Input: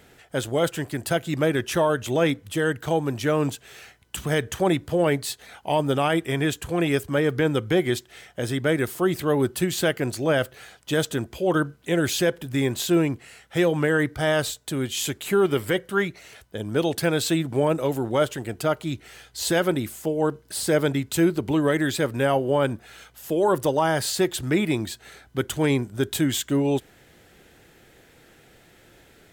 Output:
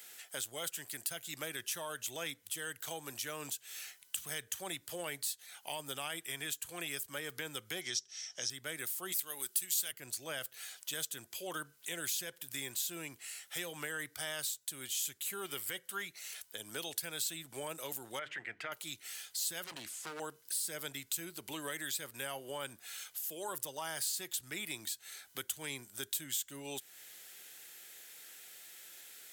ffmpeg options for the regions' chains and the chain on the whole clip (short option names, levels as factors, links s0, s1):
-filter_complex "[0:a]asettb=1/sr,asplit=3[s0][s1][s2];[s0]atrim=end=7.814[s3];[s1]atrim=start=7.81:end=8.5,asetpts=PTS-STARTPTS,afade=t=in:d=0.004:c=qsin,afade=t=out:st=0.686:d=0.004:c=qsin,lowpass=f=5700:t=q:w=12,bandreject=f=199.3:t=h:w=4,bandreject=f=398.6:t=h:w=4[s4];[s2]atrim=start=8.496[s5];[s3][s4]acrossfade=d=0.004:c1=hsin:c2=qsin[s6];[s6][s5]acrossfade=d=0.004:c1=qsin:c2=hsin,asettb=1/sr,asplit=3[s7][s8][s9];[s7]atrim=end=9.124[s10];[s8]atrim=start=9.12:end=9.92,asetpts=PTS-STARTPTS,afade=t=in:d=0.004:c=qsin,afade=t=out:st=0.796:d=0.004:c=qsin,highpass=f=470:p=1,highshelf=f=3000:g=12[s11];[s9]atrim=start=9.916[s12];[s10][s11]acrossfade=d=0.004:c1=hsin:c2=qsin[s13];[s13][s12]acrossfade=d=0.004:c1=qsin:c2=hsin,asettb=1/sr,asplit=3[s14][s15][s16];[s14]atrim=end=18.194[s17];[s15]atrim=start=18.19:end=18.72,asetpts=PTS-STARTPTS,afade=t=in:d=0.004:c=qsin,afade=t=out:st=0.526:d=0.004:c=qsin,acompressor=threshold=0.0891:ratio=6:attack=3.2:release=140:knee=1:detection=peak,lowpass=f=2000:t=q:w=4.1,bandreject=f=50:t=h:w=6,bandreject=f=100:t=h:w=6,bandreject=f=150:t=h:w=6,bandreject=f=200:t=h:w=6,bandreject=f=250:t=h:w=6,bandreject=f=300:t=h:w=6[s18];[s16]atrim=start=18.716[s19];[s17][s18]acrossfade=d=0.004:c1=hsin:c2=qsin[s20];[s20][s19]acrossfade=d=0.004:c1=qsin:c2=hsin,asettb=1/sr,asplit=3[s21][s22][s23];[s21]atrim=end=19.644[s24];[s22]atrim=start=19.64:end=20.2,asetpts=PTS-STARTPTS,afade=t=in:d=0.004:c=qsin,afade=t=out:st=0.556:d=0.004:c=qsin,lowpass=8800,aeval=exprs='0.0668*(abs(mod(val(0)/0.0668+3,4)-2)-1)':c=same,aemphasis=mode=reproduction:type=cd[s25];[s23]atrim=start=20.196[s26];[s24][s25]acrossfade=d=0.004:c1=hsin:c2=qsin[s27];[s27][s26]acrossfade=d=0.004:c1=qsin:c2=hsin,aderivative,acrossover=split=170[s28][s29];[s29]acompressor=threshold=0.00282:ratio=2.5[s30];[s28][s30]amix=inputs=2:normalize=0,volume=2.66"